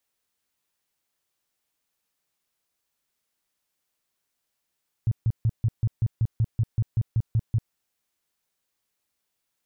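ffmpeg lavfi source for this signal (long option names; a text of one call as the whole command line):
ffmpeg -f lavfi -i "aevalsrc='0.126*sin(2*PI*113*mod(t,0.19))*lt(mod(t,0.19),5/113)':duration=2.66:sample_rate=44100" out.wav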